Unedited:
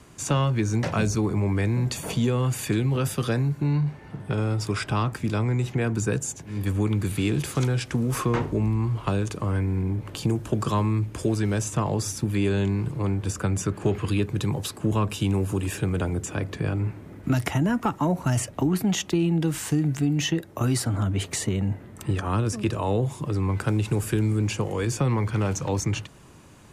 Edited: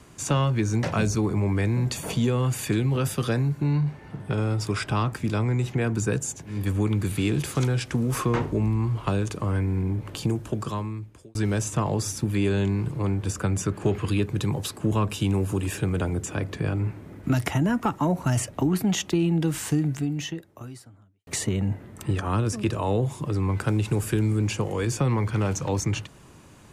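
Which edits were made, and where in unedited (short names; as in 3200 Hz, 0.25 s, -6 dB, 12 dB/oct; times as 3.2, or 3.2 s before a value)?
10.15–11.35 fade out linear
19.76–21.27 fade out quadratic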